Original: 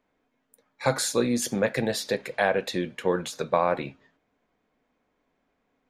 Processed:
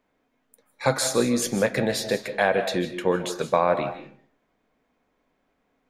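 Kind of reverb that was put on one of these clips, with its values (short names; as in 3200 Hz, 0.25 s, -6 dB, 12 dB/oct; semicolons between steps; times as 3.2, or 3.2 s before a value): digital reverb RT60 0.49 s, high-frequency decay 0.6×, pre-delay 0.115 s, DRR 9.5 dB; gain +2 dB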